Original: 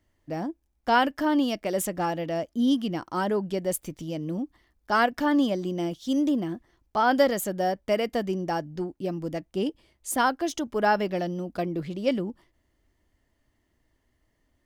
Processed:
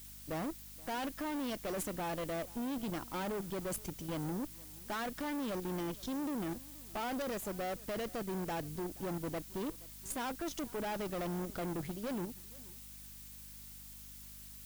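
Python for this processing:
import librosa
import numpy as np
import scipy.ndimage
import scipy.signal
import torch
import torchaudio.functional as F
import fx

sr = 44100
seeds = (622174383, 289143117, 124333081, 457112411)

p1 = fx.high_shelf(x, sr, hz=5700.0, db=-2.0)
p2 = fx.rider(p1, sr, range_db=4, speed_s=0.5)
p3 = p1 + (p2 * 10.0 ** (-3.0 / 20.0))
p4 = fx.add_hum(p3, sr, base_hz=50, snr_db=20)
p5 = fx.level_steps(p4, sr, step_db=13)
p6 = fx.tube_stage(p5, sr, drive_db=33.0, bias=0.6)
p7 = fx.dmg_noise_colour(p6, sr, seeds[0], colour='blue', level_db=-50.0)
p8 = p7 + fx.echo_single(p7, sr, ms=475, db=-21.5, dry=0)
y = p8 * 10.0 ** (-2.5 / 20.0)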